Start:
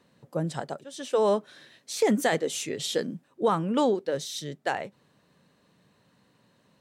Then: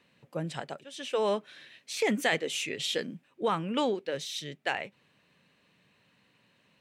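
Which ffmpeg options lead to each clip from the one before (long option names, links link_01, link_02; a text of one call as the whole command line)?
ffmpeg -i in.wav -af "equalizer=frequency=2500:width=1.4:gain=13,volume=-5.5dB" out.wav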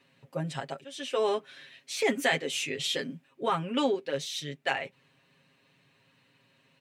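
ffmpeg -i in.wav -af "aecho=1:1:7.4:0.8,volume=-1dB" out.wav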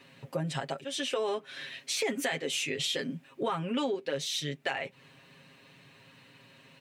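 ffmpeg -i in.wav -filter_complex "[0:a]asplit=2[link_01][link_02];[link_02]alimiter=limit=-23dB:level=0:latency=1,volume=-2dB[link_03];[link_01][link_03]amix=inputs=2:normalize=0,acompressor=threshold=-36dB:ratio=3,volume=4dB" out.wav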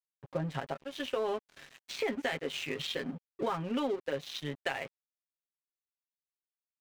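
ffmpeg -i in.wav -af "adynamicsmooth=sensitivity=2.5:basefreq=2400,aeval=exprs='sgn(val(0))*max(abs(val(0))-0.00531,0)':channel_layout=same" out.wav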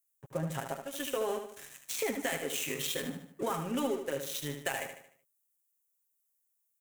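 ffmpeg -i in.wav -af "aexciter=amount=3.8:drive=9.1:freq=6400,aecho=1:1:75|150|225|300|375:0.422|0.186|0.0816|0.0359|0.0158,volume=-1dB" out.wav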